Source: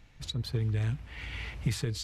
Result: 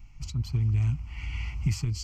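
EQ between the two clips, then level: low shelf 98 Hz +12 dB; high shelf 6700 Hz +5.5 dB; fixed phaser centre 2500 Hz, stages 8; 0.0 dB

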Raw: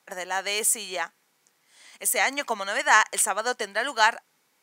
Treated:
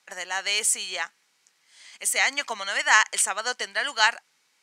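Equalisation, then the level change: air absorption 61 m; tilt shelf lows -8 dB, about 1400 Hz; notch 3500 Hz, Q 28; 0.0 dB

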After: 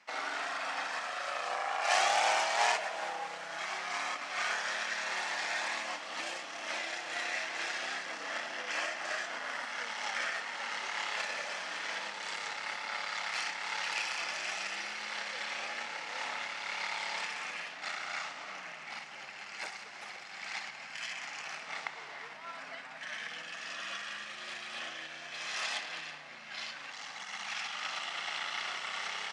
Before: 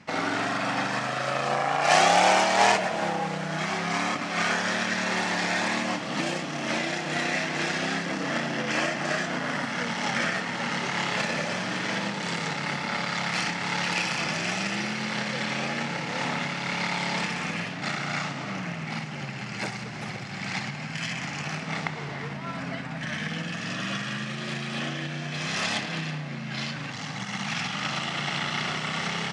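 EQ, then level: HPF 710 Hz 12 dB/oct; -7.0 dB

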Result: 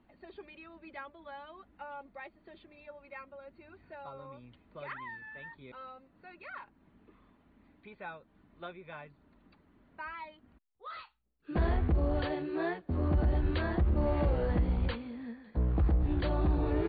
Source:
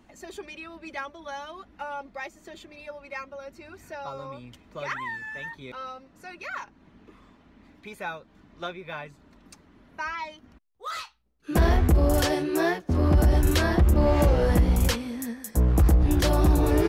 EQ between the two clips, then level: brick-wall FIR low-pass 4700 Hz; air absorption 220 m; -8.5 dB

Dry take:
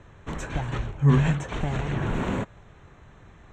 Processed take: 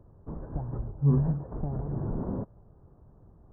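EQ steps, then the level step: Gaussian blur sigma 10 samples; -4.0 dB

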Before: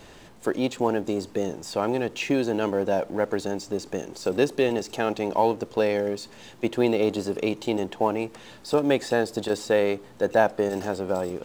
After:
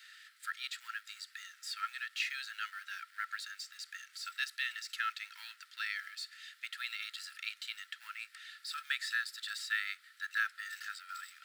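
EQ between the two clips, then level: rippled Chebyshev high-pass 1300 Hz, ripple 6 dB; bell 6300 Hz -10 dB 0.61 oct; +1.5 dB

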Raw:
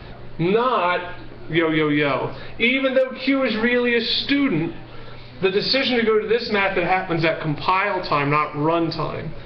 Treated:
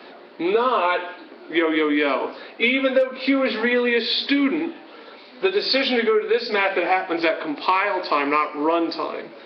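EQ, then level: Chebyshev high-pass 250 Hz, order 4; 0.0 dB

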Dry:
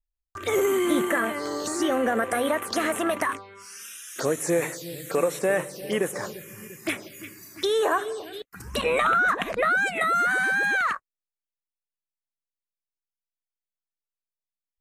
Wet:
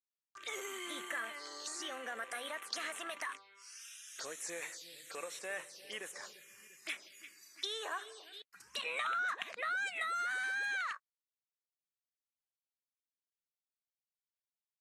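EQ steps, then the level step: HPF 59 Hz; LPF 4500 Hz 12 dB/oct; differentiator; 0.0 dB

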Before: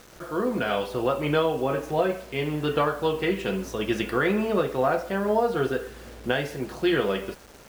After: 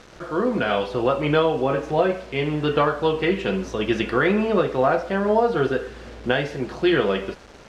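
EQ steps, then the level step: LPF 5200 Hz 12 dB/oct; +4.0 dB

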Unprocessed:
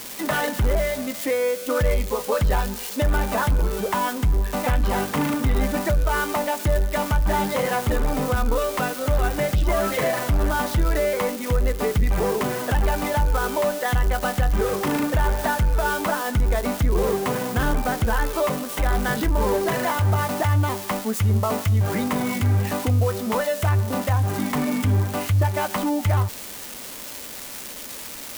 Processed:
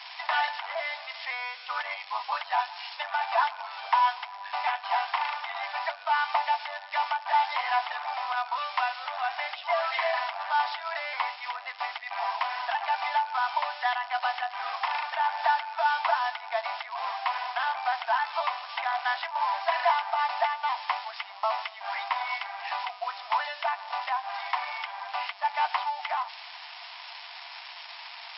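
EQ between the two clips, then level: rippled Chebyshev high-pass 670 Hz, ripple 6 dB; brick-wall FIR low-pass 5500 Hz; bell 3100 Hz -5 dB 2.6 oct; +5.5 dB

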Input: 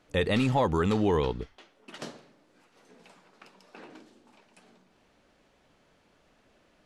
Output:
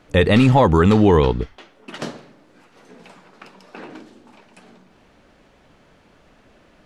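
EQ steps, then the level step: low shelf 380 Hz +7.5 dB; bell 1500 Hz +4 dB 2.6 oct; +6.5 dB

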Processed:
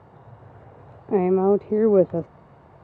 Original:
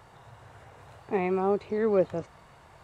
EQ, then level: band-pass 240 Hz, Q 0.58; +9.0 dB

